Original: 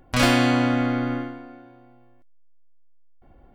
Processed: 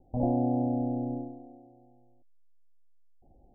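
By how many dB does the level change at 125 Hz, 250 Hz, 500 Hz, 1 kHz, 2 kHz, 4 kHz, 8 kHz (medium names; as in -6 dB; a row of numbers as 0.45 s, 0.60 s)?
-7.0 dB, -7.0 dB, -7.0 dB, -10.0 dB, under -40 dB, under -40 dB, no reading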